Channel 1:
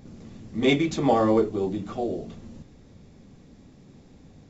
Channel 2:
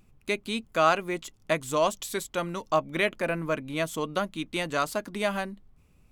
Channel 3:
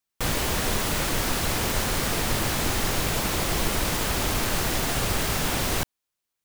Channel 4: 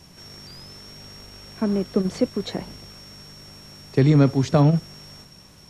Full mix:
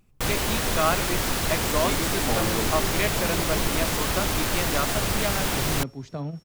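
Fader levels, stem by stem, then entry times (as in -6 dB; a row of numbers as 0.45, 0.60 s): -10.0, -1.5, 0.0, -16.0 dB; 1.20, 0.00, 0.00, 1.60 s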